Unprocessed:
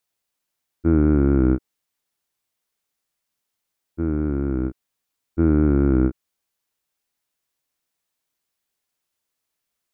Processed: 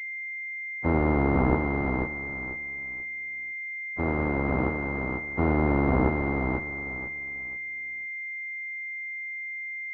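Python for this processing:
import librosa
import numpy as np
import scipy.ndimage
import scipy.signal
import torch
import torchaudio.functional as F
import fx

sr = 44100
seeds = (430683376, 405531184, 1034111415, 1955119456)

y = fx.spec_flatten(x, sr, power=0.27)
y = 10.0 ** (-15.0 / 20.0) * np.tanh(y / 10.0 ** (-15.0 / 20.0))
y = fx.echo_feedback(y, sr, ms=490, feedback_pct=26, wet_db=-4.5)
y = fx.pwm(y, sr, carrier_hz=2100.0)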